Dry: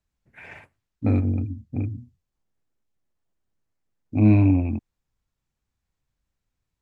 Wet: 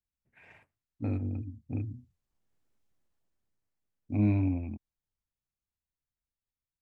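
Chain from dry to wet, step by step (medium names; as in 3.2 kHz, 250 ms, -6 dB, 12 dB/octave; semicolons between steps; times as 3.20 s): Doppler pass-by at 2.79 s, 7 m/s, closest 2.7 m; trim +2 dB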